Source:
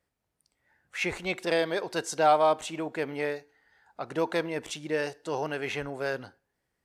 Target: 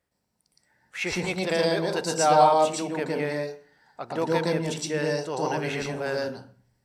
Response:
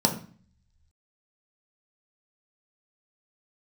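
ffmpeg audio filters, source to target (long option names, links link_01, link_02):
-filter_complex "[0:a]asplit=2[link_01][link_02];[1:a]atrim=start_sample=2205,highshelf=frequency=3400:gain=11,adelay=114[link_03];[link_02][link_03]afir=irnorm=-1:irlink=0,volume=-14.5dB[link_04];[link_01][link_04]amix=inputs=2:normalize=0"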